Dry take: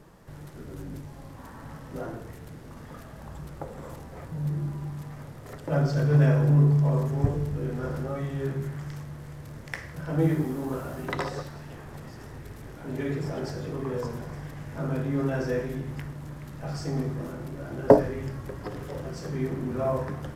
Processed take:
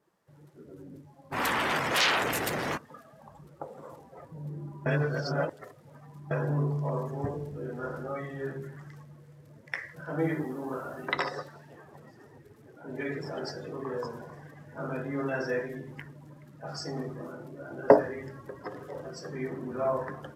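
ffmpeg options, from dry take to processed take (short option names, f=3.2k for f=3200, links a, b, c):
-filter_complex "[0:a]asplit=3[a][b][c];[a]afade=t=out:st=1.31:d=0.02[d];[b]aeval=exprs='0.0631*sin(PI/2*7.94*val(0)/0.0631)':c=same,afade=t=in:st=1.31:d=0.02,afade=t=out:st=2.76:d=0.02[e];[c]afade=t=in:st=2.76:d=0.02[f];[d][e][f]amix=inputs=3:normalize=0,asplit=3[g][h][i];[g]atrim=end=4.862[j];[h]atrim=start=4.858:end=6.312,asetpts=PTS-STARTPTS,areverse[k];[i]atrim=start=6.308[l];[j][k]acrossfade=d=0.004:c1=hsin:c2=hsin[m];[m][l]acrossfade=d=0.004:c1=hsin:c2=hsin,highpass=f=500:p=1,afftdn=nr=17:nf=-43,adynamicequalizer=threshold=0.00316:dfrequency=1600:dqfactor=0.7:tfrequency=1600:tqfactor=0.7:attack=5:release=100:ratio=0.375:range=3:mode=boostabove:tftype=highshelf,volume=1dB"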